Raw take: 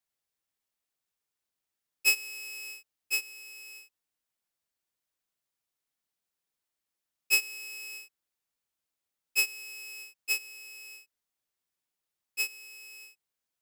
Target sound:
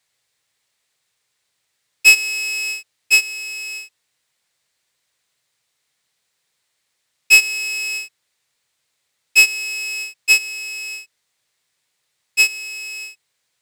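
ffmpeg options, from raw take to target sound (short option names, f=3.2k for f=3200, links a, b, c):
-af "equalizer=f=125:t=o:w=1:g=12,equalizer=f=500:t=o:w=1:g=8,equalizer=f=1k:t=o:w=1:g=5,equalizer=f=2k:t=o:w=1:g=11,equalizer=f=4k:t=o:w=1:g=10,equalizer=f=8k:t=o:w=1:g=10,acontrast=80,volume=-1dB"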